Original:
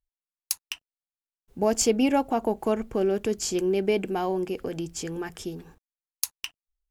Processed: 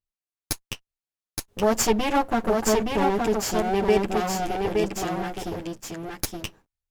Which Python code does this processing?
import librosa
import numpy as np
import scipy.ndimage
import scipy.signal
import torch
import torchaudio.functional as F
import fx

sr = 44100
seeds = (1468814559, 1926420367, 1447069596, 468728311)

y = fx.lower_of_two(x, sr, delay_ms=9.5)
y = fx.high_shelf(y, sr, hz=11000.0, db=-5.0)
y = fx.leveller(y, sr, passes=1)
y = y + 10.0 ** (-3.5 / 20.0) * np.pad(y, (int(870 * sr / 1000.0), 0))[:len(y)]